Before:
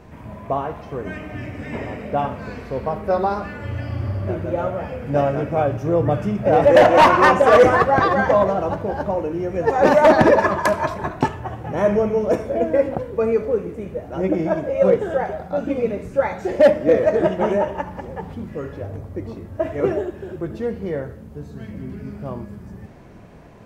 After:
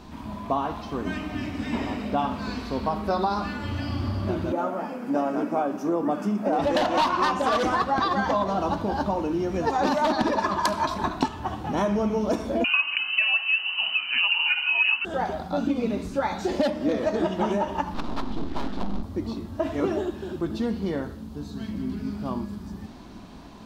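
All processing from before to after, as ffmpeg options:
-filter_complex "[0:a]asettb=1/sr,asplit=3[s0][s1][s2];[s0]atrim=end=4.524[s3];[s1]atrim=start=4.52:end=6.59,asetpts=PTS-STARTPTS,afade=t=in:d=0.004:c=qsin,afade=t=out:st=2.066:d=0.004:c=qsin,highpass=f=210:w=0.5412,highpass=f=210:w=1.3066,equalizer=f=3600:t=o:w=1.1:g=-12[s4];[s2]atrim=start=6.586[s5];[s3][s4]acrossfade=d=0.004:c1=hsin:c2=qsin[s6];[s6][s5]acrossfade=d=0.004:c1=qsin:c2=hsin,asettb=1/sr,asplit=3[s7][s8][s9];[s7]atrim=end=12.644[s10];[s8]atrim=start=12.64:end=15.05,asetpts=PTS-STARTPTS,afade=t=in:d=0.004:c=qsin,afade=t=out:st=2.406:d=0.004:c=qsin,equalizer=f=2300:w=0.41:g=11,lowpass=f=2600:t=q:w=0.5098,lowpass=f=2600:t=q:w=0.6013,lowpass=f=2600:t=q:w=0.9,lowpass=f=2600:t=q:w=2.563,afreqshift=-3100[s11];[s9]atrim=start=15.046[s12];[s10][s11]acrossfade=d=0.004:c1=hsin:c2=qsin[s13];[s13][s12]acrossfade=d=0.004:c1=qsin:c2=hsin,asettb=1/sr,asplit=3[s14][s15][s16];[s14]atrim=end=17.944[s17];[s15]atrim=start=17.94:end=19.03,asetpts=PTS-STARTPTS,afade=t=in:d=0.004:c=qsin,afade=t=out:st=1.086:d=0.004:c=qsin,lowpass=4900,lowshelf=f=210:g=8.5,aeval=exprs='abs(val(0))':c=same[s18];[s16]atrim=start=19.026[s19];[s17][s18]acrossfade=d=0.004:c1=hsin:c2=qsin[s20];[s20][s19]acrossfade=d=0.004:c1=qsin:c2=hsin,equalizer=f=125:t=o:w=1:g=-11,equalizer=f=250:t=o:w=1:g=7,equalizer=f=500:t=o:w=1:g=-11,equalizer=f=1000:t=o:w=1:g=4,equalizer=f=2000:t=o:w=1:g=-8,equalizer=f=4000:t=o:w=1:g=11,acompressor=threshold=0.0708:ratio=6,volume=1.33"

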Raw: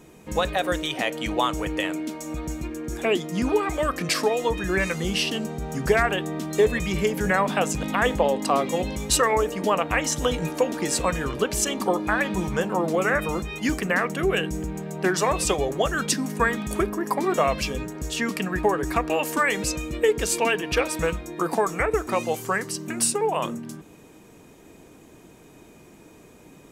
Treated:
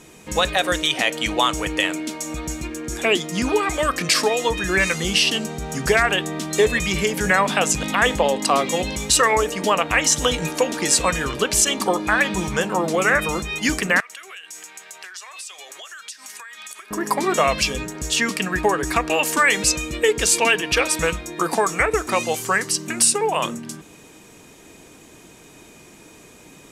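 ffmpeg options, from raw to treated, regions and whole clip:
-filter_complex "[0:a]asettb=1/sr,asplit=3[s0][s1][s2];[s0]atrim=end=14.004[s3];[s1]atrim=start=14:end=16.91,asetpts=PTS-STARTPTS,afade=t=in:d=0.004:c=qsin,afade=t=out:st=2.906:d=0.004:c=qsin,highpass=1400,acompressor=threshold=0.00891:ratio=16:attack=3.2:release=140:knee=1:detection=peak[s4];[s2]atrim=start=16.906[s5];[s3][s4]acrossfade=d=0.004:c1=hsin:c2=qsin[s6];[s6][s5]acrossfade=d=0.004:c1=qsin:c2=hsin,lowpass=11000,tiltshelf=f=1500:g=-5,alimiter=level_in=3.35:limit=0.891:release=50:level=0:latency=1,volume=0.596"

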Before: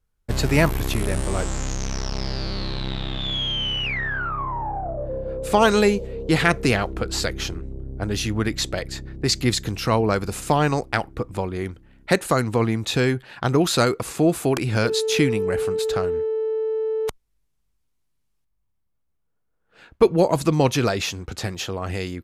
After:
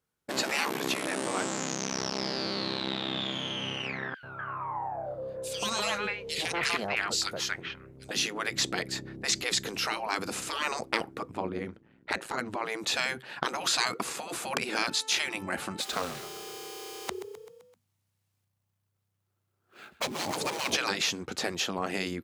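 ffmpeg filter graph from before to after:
-filter_complex "[0:a]asettb=1/sr,asplit=3[s0][s1][s2];[s0]atrim=end=4.144[s3];[s1]atrim=start=4.14:end=8.11,asetpts=PTS-STARTPTS,afade=t=in:d=0.004:c=qsin,afade=t=out:st=3.966:d=0.004:c=qsin,equalizer=f=270:w=0.63:g=-12.5,acrossover=split=930|2800[s4][s5][s6];[s4]adelay=90[s7];[s5]adelay=250[s8];[s7][s8][s6]amix=inputs=3:normalize=0,atrim=end_sample=175077[s9];[s2]atrim=start=8.106[s10];[s3][s9]acrossfade=d=0.004:c1=hsin:c2=qsin[s11];[s11][s10]acrossfade=d=0.004:c1=qsin:c2=hsin,asettb=1/sr,asplit=3[s12][s13][s14];[s12]atrim=end=11.314[s15];[s13]atrim=start=11.31:end=12.66,asetpts=PTS-STARTPTS,afade=t=in:d=0.004:c=qsin,afade=t=out:st=1.346:d=0.004:c=qsin,lowpass=f=2600:p=1,tremolo=f=110:d=0.788[s16];[s14]atrim=start=12.656[s17];[s15][s16]acrossfade=d=0.004:c1=hsin:c2=qsin[s18];[s18][s17]acrossfade=d=0.004:c1=qsin:c2=hsin,asettb=1/sr,asplit=3[s19][s20][s21];[s19]atrim=end=15.804[s22];[s20]atrim=start=15.8:end=20.76,asetpts=PTS-STARTPTS,afade=t=in:d=0.004:c=qsin,afade=t=out:st=4.956:d=0.004:c=qsin,afreqshift=-99,acrusher=bits=4:mode=log:mix=0:aa=0.000001,asplit=6[s23][s24][s25][s26][s27][s28];[s24]adelay=129,afreqshift=31,volume=0.158[s29];[s25]adelay=258,afreqshift=62,volume=0.0891[s30];[s26]adelay=387,afreqshift=93,volume=0.0495[s31];[s27]adelay=516,afreqshift=124,volume=0.0279[s32];[s28]adelay=645,afreqshift=155,volume=0.0157[s33];[s23][s29][s30][s31][s32][s33]amix=inputs=6:normalize=0,atrim=end_sample=218736[s34];[s21]atrim=start=20.756[s35];[s22][s34]acrossfade=d=0.004:c1=hsin:c2=qsin[s36];[s36][s35]acrossfade=d=0.004:c1=qsin:c2=hsin,afftfilt=real='re*lt(hypot(re,im),0.224)':imag='im*lt(hypot(re,im),0.224)':win_size=1024:overlap=0.75,acrossover=split=8100[s37][s38];[s38]acompressor=threshold=0.00631:ratio=4:attack=1:release=60[s39];[s37][s39]amix=inputs=2:normalize=0,highpass=170"

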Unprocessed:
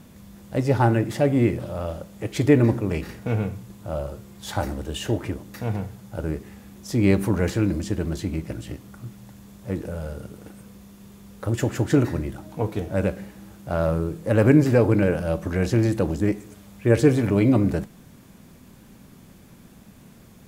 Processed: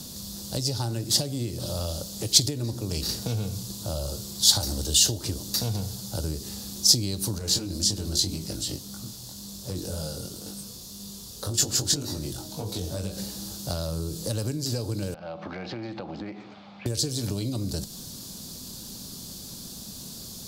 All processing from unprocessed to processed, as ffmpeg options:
-filter_complex "[0:a]asettb=1/sr,asplit=3[s0][s1][s2];[s0]atrim=end=7.384[s3];[s1]atrim=start=7.38:end=13.18,asetpts=PTS-STARTPTS,afade=t=in:d=0.004:c=qsin,afade=t=out:st=5.796:d=0.004:c=qsin,acompressor=threshold=0.0631:ratio=6:attack=3.2:release=140:knee=1:detection=peak,flanger=delay=20:depth=2.6:speed=1.9[s4];[s2]atrim=start=13.176[s5];[s3][s4]acrossfade=d=0.004:c1=hsin:c2=qsin[s6];[s6][s5]acrossfade=d=0.004:c1=qsin:c2=hsin,asettb=1/sr,asplit=3[s7][s8][s9];[s7]atrim=end=15.144[s10];[s8]atrim=start=15.14:end=16.86,asetpts=PTS-STARTPTS,afade=t=in:d=0.004:c=qsin,afade=t=out:st=1.716:d=0.004:c=qsin,highpass=230,equalizer=f=290:t=q:w=4:g=-5,equalizer=f=430:t=q:w=4:g=-8,equalizer=f=790:t=q:w=4:g=9,equalizer=f=1300:t=q:w=4:g=5,equalizer=f=2200:t=q:w=4:g=10,lowpass=f=2600:w=0.5412,lowpass=f=2600:w=1.3066,acompressor=threshold=0.02:ratio=4:attack=3.2:release=140:knee=1:detection=peak[s11];[s9]atrim=start=16.856[s12];[s10][s11]acrossfade=d=0.004:c1=hsin:c2=qsin[s13];[s13][s12]acrossfade=d=0.004:c1=qsin:c2=hsin,acompressor=threshold=0.0562:ratio=6,highshelf=f=3100:t=q:w=3:g=13,acrossover=split=130|3000[s14][s15][s16];[s15]acompressor=threshold=0.0141:ratio=3[s17];[s14][s17][s16]amix=inputs=3:normalize=0,volume=1.5"

